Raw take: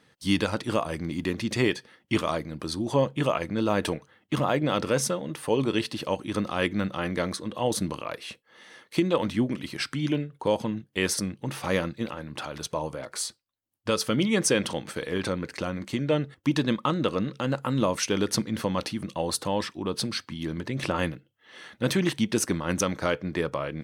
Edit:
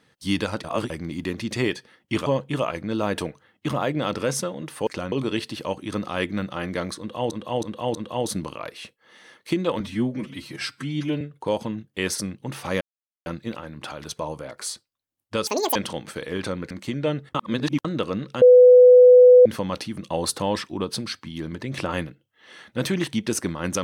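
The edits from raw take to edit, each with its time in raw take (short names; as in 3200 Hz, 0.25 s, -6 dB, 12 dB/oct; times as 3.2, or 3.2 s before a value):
0.64–0.9 reverse
2.26–2.93 cut
7.41–7.73 loop, 4 plays
9.26–10.2 stretch 1.5×
11.8 insert silence 0.45 s
14.01–14.56 speed 192%
15.51–15.76 move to 5.54
16.4–16.9 reverse
17.47–18.51 bleep 498 Hz -7 dBFS
19.16–19.9 gain +3 dB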